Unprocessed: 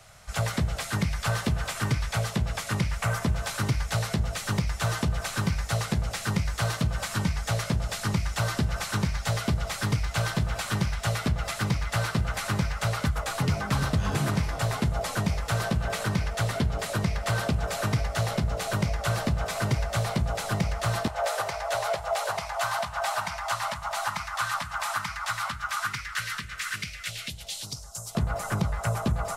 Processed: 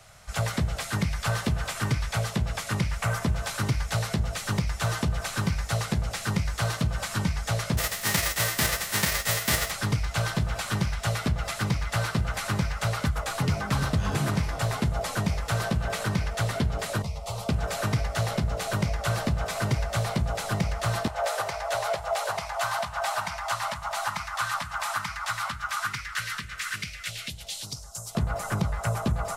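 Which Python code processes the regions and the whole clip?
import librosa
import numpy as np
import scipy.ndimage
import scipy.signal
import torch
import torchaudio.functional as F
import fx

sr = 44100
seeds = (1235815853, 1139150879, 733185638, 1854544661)

y = fx.envelope_flatten(x, sr, power=0.3, at=(7.77, 9.7), fade=0.02)
y = fx.peak_eq(y, sr, hz=1900.0, db=8.5, octaves=0.21, at=(7.77, 9.7), fade=0.02)
y = fx.chain(y, sr, fx.fixed_phaser(hz=680.0, stages=4),
    fx.ensemble(), at=(17.02, 17.49))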